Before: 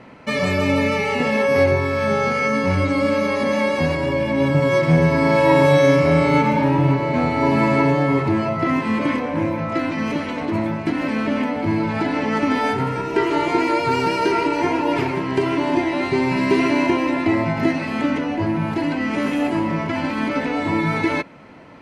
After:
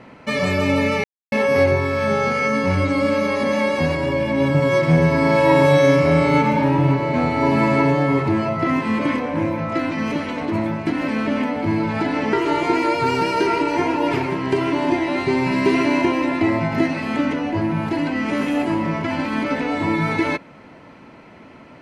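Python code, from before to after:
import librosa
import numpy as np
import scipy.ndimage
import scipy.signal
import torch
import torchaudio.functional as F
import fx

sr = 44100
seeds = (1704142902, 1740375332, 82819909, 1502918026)

y = fx.edit(x, sr, fx.silence(start_s=1.04, length_s=0.28),
    fx.cut(start_s=12.33, length_s=0.85), tone=tone)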